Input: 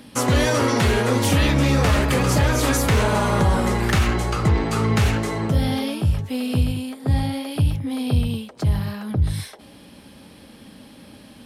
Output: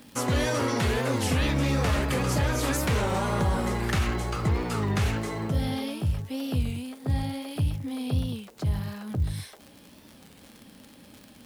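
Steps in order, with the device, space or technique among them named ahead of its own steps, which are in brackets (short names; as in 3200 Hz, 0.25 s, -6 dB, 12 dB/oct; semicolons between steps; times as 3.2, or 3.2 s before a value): warped LP (record warp 33 1/3 rpm, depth 160 cents; crackle 80/s -29 dBFS; white noise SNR 37 dB); gain -7 dB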